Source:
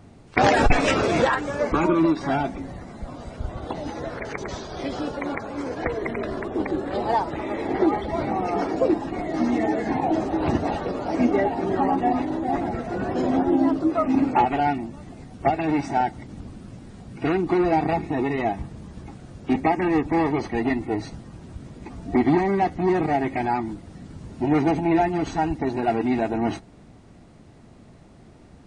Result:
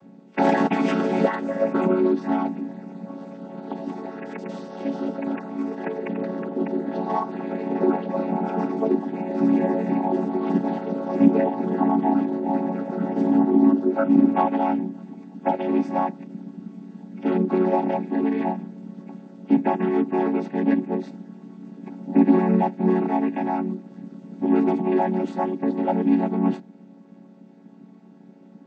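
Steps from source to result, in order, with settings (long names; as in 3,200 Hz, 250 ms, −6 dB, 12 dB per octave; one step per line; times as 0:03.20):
channel vocoder with a chord as carrier minor triad, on F#3
level +2 dB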